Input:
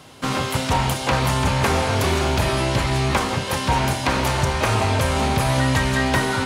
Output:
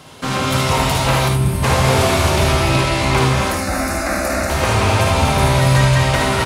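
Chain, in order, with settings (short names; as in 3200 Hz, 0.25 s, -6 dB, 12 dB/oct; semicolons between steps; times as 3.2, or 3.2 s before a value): 1.65–2.3 delta modulation 64 kbps, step -22 dBFS; 3.28–4.5 fixed phaser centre 640 Hz, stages 8; in parallel at -0.5 dB: limiter -17.5 dBFS, peak gain reduction 10.5 dB; on the sum: non-linear reverb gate 0.3 s rising, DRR 0.5 dB; 1.28–1.63 spectral gain 410–8000 Hz -12 dB; on a send: early reflections 54 ms -6.5 dB, 75 ms -6 dB; on the sum: gain -2.5 dB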